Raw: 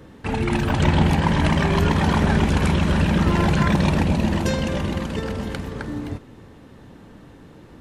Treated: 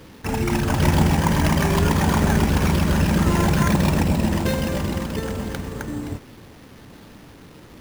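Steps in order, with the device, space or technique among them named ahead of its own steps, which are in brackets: early 8-bit sampler (sample-rate reducer 7900 Hz; bit-crush 8-bit)

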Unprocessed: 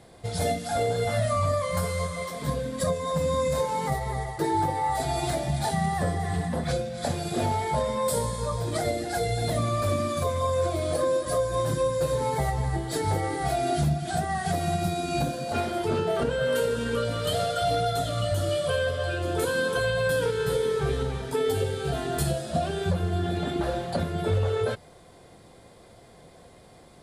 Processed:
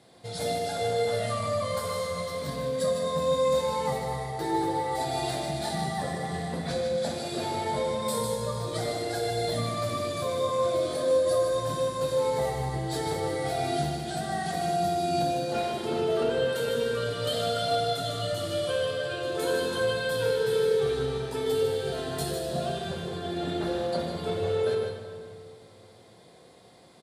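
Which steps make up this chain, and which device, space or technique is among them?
PA in a hall (HPF 130 Hz 12 dB/oct; bell 4000 Hz +5.5 dB 0.88 oct; echo 0.152 s -7 dB; reverb RT60 2.0 s, pre-delay 8 ms, DRR 2 dB); gain -6 dB

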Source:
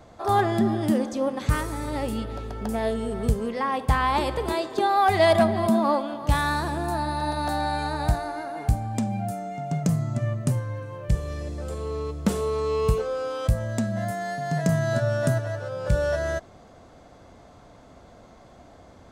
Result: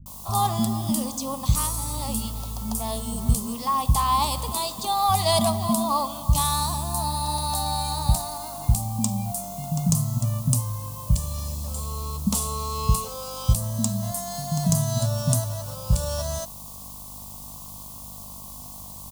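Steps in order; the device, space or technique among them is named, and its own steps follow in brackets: video cassette with head-switching buzz (buzz 50 Hz, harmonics 23, -47 dBFS -3 dB/oct; white noise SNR 30 dB); EQ curve 240 Hz 0 dB, 360 Hz -19 dB, 1100 Hz +2 dB, 1600 Hz -21 dB, 2900 Hz -1 dB, 4500 Hz +6 dB, 9900 Hz +13 dB; bands offset in time lows, highs 60 ms, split 250 Hz; gain +2.5 dB

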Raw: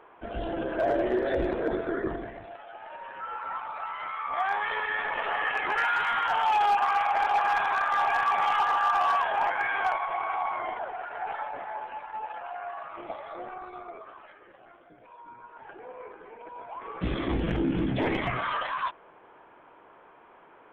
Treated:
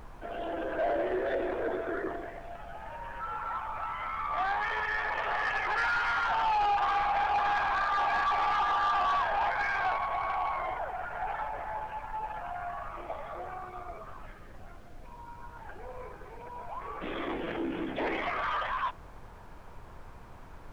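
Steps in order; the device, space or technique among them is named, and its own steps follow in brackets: aircraft cabin announcement (BPF 400–3000 Hz; soft clip -23 dBFS, distortion -15 dB; brown noise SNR 14 dB)

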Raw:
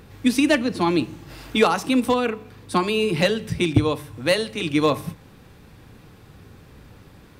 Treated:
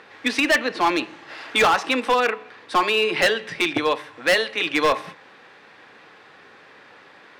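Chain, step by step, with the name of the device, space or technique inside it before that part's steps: megaphone (BPF 580–3900 Hz; bell 1800 Hz +5.5 dB 0.46 oct; hard clip -19.5 dBFS, distortion -9 dB); gain +6.5 dB

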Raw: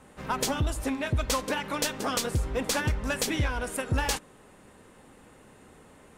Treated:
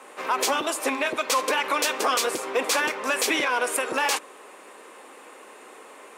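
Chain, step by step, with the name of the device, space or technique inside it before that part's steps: laptop speaker (HPF 350 Hz 24 dB/oct; bell 1100 Hz +6 dB 0.27 oct; bell 2400 Hz +5 dB 0.34 oct; limiter -22.5 dBFS, peak gain reduction 8.5 dB); gain +9 dB

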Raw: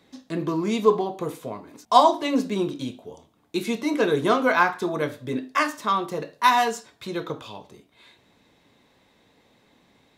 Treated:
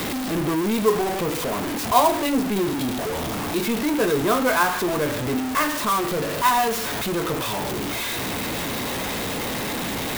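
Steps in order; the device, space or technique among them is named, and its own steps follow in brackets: early CD player with a faulty converter (zero-crossing step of -17.5 dBFS; clock jitter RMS 0.036 ms); gain -3.5 dB

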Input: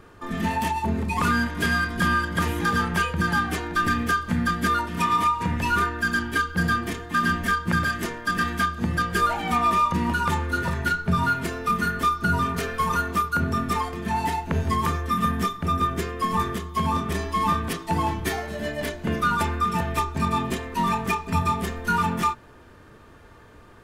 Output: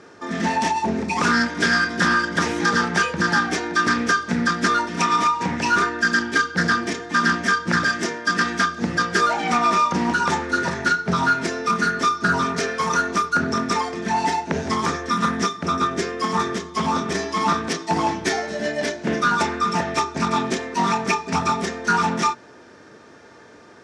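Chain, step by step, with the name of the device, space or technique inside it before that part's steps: full-range speaker at full volume (Doppler distortion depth 0.27 ms; speaker cabinet 220–8000 Hz, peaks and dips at 1100 Hz -6 dB, 2900 Hz -5 dB, 5600 Hz +9 dB); gain +6 dB

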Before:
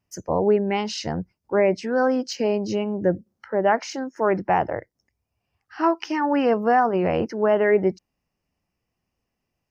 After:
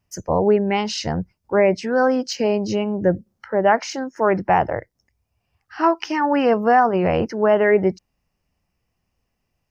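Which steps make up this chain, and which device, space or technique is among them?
low shelf boost with a cut just above (low shelf 68 Hz +7.5 dB; bell 310 Hz -3 dB 1.1 oct); gain +4 dB

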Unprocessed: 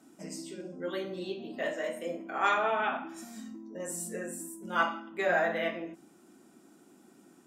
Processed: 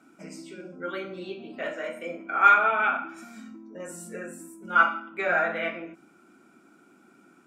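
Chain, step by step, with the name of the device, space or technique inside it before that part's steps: inside a helmet (high shelf 5800 Hz -8 dB; small resonant body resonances 1400/2300 Hz, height 15 dB, ringing for 20 ms)

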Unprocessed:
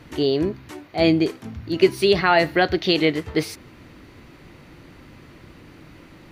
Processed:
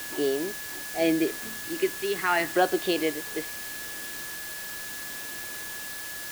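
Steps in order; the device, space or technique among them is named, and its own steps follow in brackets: shortwave radio (BPF 330–2800 Hz; tremolo 0.75 Hz, depth 58%; LFO notch saw down 0.39 Hz 510–2100 Hz; whine 1700 Hz -38 dBFS; white noise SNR 8 dB); gain -1.5 dB

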